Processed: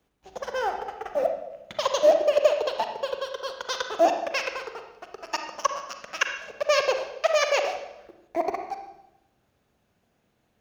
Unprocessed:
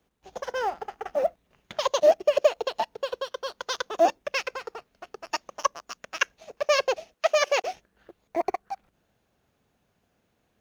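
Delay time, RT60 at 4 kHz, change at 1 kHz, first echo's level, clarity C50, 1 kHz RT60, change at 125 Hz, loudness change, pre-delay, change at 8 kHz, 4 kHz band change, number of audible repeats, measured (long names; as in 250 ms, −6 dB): no echo audible, 0.80 s, +1.0 dB, no echo audible, 6.0 dB, 0.90 s, can't be measured, +1.0 dB, 36 ms, can't be measured, +1.0 dB, no echo audible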